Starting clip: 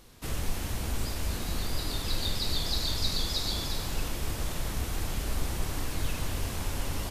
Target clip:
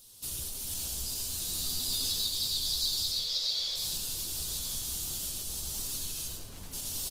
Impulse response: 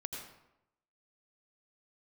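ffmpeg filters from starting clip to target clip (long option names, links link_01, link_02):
-filter_complex "[0:a]acompressor=threshold=-30dB:ratio=10,aexciter=amount=10.1:drive=3.3:freq=3100,flanger=delay=7.1:depth=8.3:regen=21:speed=1.7:shape=triangular,asettb=1/sr,asplit=3[link_01][link_02][link_03];[link_01]atrim=end=1.514[link_04];[link_02]atrim=start=1.51:end=2.19,asetpts=PTS-STARTPTS,afade=type=in:duration=0.004:curve=qsin,afade=type=out:start_time=0.676:duration=0.004:curve=qsin,asplit=2[link_05][link_06];[link_06]adelay=12,volume=-2.5dB[link_07];[link_05][link_07]amix=inputs=2:normalize=0,atrim=end_sample=29988[link_08];[link_03]atrim=start=2.186[link_09];[link_04][link_08]acrossfade=duration=0.004:curve1=hsin:curve2=qsin[link_10];[link_10][link_09]acrossfade=duration=0.004:curve1=qsin:curve2=hsin,asettb=1/sr,asplit=3[link_11][link_12][link_13];[link_11]atrim=end=3.114[link_14];[link_12]atrim=start=3.11:end=3.77,asetpts=PTS-STARTPTS,afade=type=in:duration=0.004:curve=qsin,afade=type=out:start_time=0.656:duration=0.004:curve=qsin,highpass=frequency=460:width=0.5412,highpass=frequency=460:width=1.3066,equalizer=frequency=530:width_type=q:width=4:gain=7,equalizer=frequency=870:width_type=q:width=4:gain=-5,equalizer=frequency=2100:width_type=q:width=4:gain=7,lowpass=frequency=5500:width=0.5412,lowpass=frequency=5500:width=1.3066[link_15];[link_13]atrim=start=3.766[link_16];[link_14][link_15]acrossfade=duration=0.004:curve1=hsin:curve2=qsin[link_17];[link_17][link_16]acrossfade=duration=0.004:curve1=qsin:curve2=hsin,asplit=3[link_18][link_19][link_20];[link_18]afade=type=out:start_time=6.27:duration=0.02[link_21];[link_19]adynamicsmooth=sensitivity=3.5:basefreq=700,afade=type=in:start_time=6.27:duration=0.02,afade=type=out:start_time=6.72:duration=0.02[link_22];[link_20]afade=type=in:start_time=6.72:duration=0.02[link_23];[link_21][link_22][link_23]amix=inputs=3:normalize=0,aecho=1:1:1073:0.211[link_24];[1:a]atrim=start_sample=2205[link_25];[link_24][link_25]afir=irnorm=-1:irlink=0,volume=-6dB" -ar 48000 -c:a libopus -b:a 24k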